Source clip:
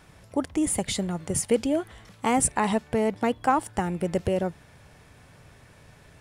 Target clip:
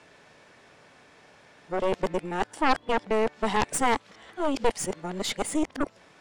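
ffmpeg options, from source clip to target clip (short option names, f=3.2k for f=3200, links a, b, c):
-filter_complex "[0:a]areverse,acrossover=split=220 7800:gain=0.0891 1 0.0891[a][b][c];[a][b][c]amix=inputs=3:normalize=0,aeval=exprs='0.299*(cos(1*acos(clip(val(0)/0.299,-1,1)))-cos(1*PI/2))+0.0531*(cos(3*acos(clip(val(0)/0.299,-1,1)))-cos(3*PI/2))+0.106*(cos(4*acos(clip(val(0)/0.299,-1,1)))-cos(4*PI/2))+0.0668*(cos(5*acos(clip(val(0)/0.299,-1,1)))-cos(5*PI/2))':c=same,volume=-2.5dB"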